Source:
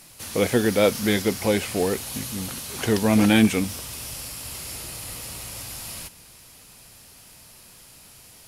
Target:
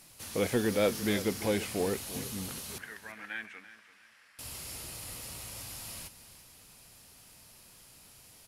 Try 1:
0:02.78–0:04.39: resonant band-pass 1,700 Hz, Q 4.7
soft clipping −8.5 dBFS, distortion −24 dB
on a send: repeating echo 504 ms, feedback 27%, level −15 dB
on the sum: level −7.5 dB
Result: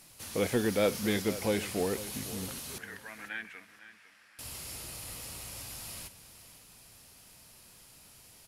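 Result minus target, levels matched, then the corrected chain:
echo 166 ms late
0:02.78–0:04.39: resonant band-pass 1,700 Hz, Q 4.7
soft clipping −8.5 dBFS, distortion −24 dB
on a send: repeating echo 338 ms, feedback 27%, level −15 dB
on the sum: level −7.5 dB

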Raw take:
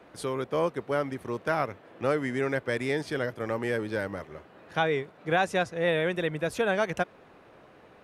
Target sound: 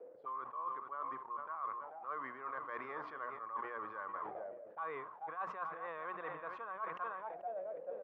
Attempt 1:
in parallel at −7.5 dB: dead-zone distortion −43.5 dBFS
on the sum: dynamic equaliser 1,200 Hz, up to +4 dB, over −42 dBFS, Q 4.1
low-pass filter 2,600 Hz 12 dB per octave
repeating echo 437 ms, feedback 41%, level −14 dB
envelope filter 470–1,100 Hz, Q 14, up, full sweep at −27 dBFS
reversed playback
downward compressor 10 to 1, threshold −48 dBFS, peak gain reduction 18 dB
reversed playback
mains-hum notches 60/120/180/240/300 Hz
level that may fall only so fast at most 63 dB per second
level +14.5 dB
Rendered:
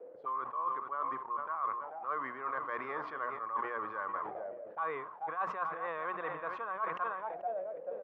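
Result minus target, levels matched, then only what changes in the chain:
downward compressor: peak gain reduction −6.5 dB
change: downward compressor 10 to 1, threshold −55 dBFS, peak gain reduction 24 dB

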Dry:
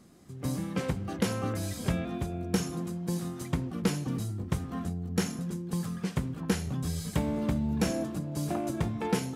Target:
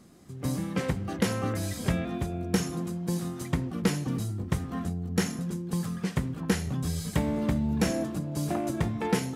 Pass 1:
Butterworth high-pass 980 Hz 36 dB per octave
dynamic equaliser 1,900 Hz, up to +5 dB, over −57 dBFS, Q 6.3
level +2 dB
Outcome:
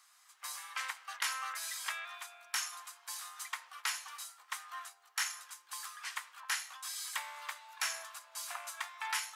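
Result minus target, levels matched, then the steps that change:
1,000 Hz band +5.0 dB
remove: Butterworth high-pass 980 Hz 36 dB per octave

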